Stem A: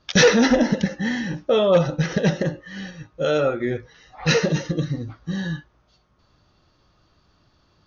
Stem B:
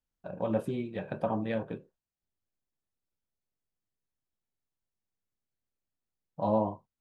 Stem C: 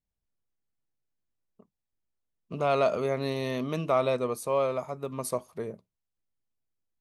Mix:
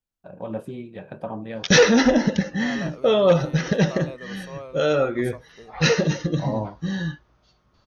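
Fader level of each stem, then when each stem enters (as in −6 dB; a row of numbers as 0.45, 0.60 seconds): 0.0, −1.0, −11.5 decibels; 1.55, 0.00, 0.00 seconds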